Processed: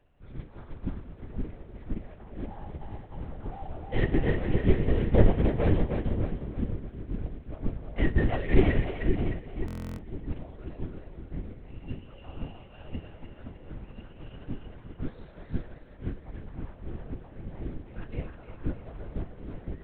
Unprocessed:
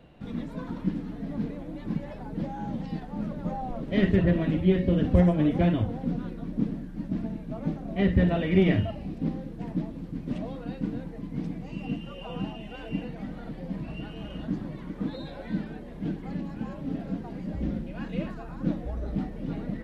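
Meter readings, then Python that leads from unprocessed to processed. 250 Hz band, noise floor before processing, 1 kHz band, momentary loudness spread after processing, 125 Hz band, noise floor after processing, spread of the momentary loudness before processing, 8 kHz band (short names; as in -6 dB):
-6.5 dB, -41 dBFS, -3.0 dB, 19 LU, -2.0 dB, -49 dBFS, 14 LU, n/a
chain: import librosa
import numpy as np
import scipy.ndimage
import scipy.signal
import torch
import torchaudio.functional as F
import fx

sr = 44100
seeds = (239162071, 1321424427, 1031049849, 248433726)

y = fx.cvsd(x, sr, bps=32000)
y = scipy.signal.sosfilt(scipy.signal.butter(2, 2400.0, 'lowpass', fs=sr, output='sos'), y)
y = fx.tilt_eq(y, sr, slope=1.5)
y = fx.lpc_vocoder(y, sr, seeds[0], excitation='whisper', order=8)
y = fx.quant_float(y, sr, bits=8)
y = fx.low_shelf(y, sr, hz=75.0, db=7.0)
y = fx.echo_split(y, sr, split_hz=430.0, low_ms=516, high_ms=307, feedback_pct=52, wet_db=-4)
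y = fx.buffer_glitch(y, sr, at_s=(9.66,), block=1024, repeats=13)
y = fx.upward_expand(y, sr, threshold_db=-41.0, expansion=1.5)
y = y * librosa.db_to_amplitude(2.0)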